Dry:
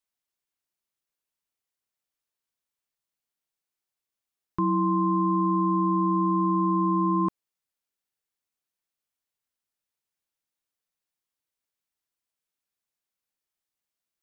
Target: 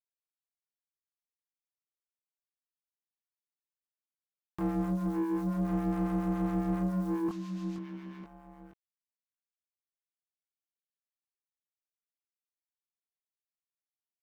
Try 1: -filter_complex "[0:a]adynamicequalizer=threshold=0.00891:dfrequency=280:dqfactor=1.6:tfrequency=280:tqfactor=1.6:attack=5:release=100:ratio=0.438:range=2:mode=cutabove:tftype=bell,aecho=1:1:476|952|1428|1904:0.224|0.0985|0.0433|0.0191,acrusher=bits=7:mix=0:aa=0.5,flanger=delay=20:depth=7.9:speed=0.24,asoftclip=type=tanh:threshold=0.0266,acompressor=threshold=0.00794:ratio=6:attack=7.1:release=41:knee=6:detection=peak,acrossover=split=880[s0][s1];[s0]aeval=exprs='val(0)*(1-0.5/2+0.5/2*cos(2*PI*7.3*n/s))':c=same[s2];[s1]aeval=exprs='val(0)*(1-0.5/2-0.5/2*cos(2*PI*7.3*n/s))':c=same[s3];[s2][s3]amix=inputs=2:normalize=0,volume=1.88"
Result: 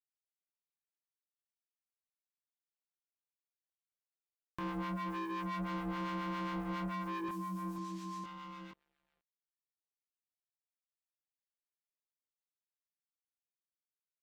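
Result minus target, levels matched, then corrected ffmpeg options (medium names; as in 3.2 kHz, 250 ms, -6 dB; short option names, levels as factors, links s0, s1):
1 kHz band +10.0 dB; compression: peak gain reduction +8.5 dB
-filter_complex "[0:a]adynamicequalizer=threshold=0.00891:dfrequency=280:dqfactor=1.6:tfrequency=280:tqfactor=1.6:attack=5:release=100:ratio=0.438:range=2:mode=cutabove:tftype=bell,asuperstop=centerf=1000:order=8:qfactor=6.7,aecho=1:1:476|952|1428|1904:0.224|0.0985|0.0433|0.0191,acrusher=bits=7:mix=0:aa=0.5,flanger=delay=20:depth=7.9:speed=0.24,asoftclip=type=tanh:threshold=0.0266,acrossover=split=880[s0][s1];[s0]aeval=exprs='val(0)*(1-0.5/2+0.5/2*cos(2*PI*7.3*n/s))':c=same[s2];[s1]aeval=exprs='val(0)*(1-0.5/2-0.5/2*cos(2*PI*7.3*n/s))':c=same[s3];[s2][s3]amix=inputs=2:normalize=0,volume=1.88"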